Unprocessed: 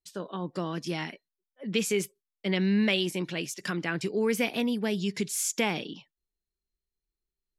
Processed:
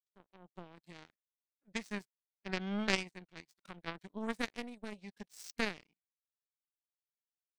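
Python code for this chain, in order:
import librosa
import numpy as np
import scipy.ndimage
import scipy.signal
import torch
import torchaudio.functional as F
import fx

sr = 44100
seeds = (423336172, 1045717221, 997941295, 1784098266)

y = fx.power_curve(x, sr, exponent=3.0)
y = fx.formant_shift(y, sr, semitones=-4)
y = fx.hpss(y, sr, part='harmonic', gain_db=4)
y = y * 10.0 ** (2.5 / 20.0)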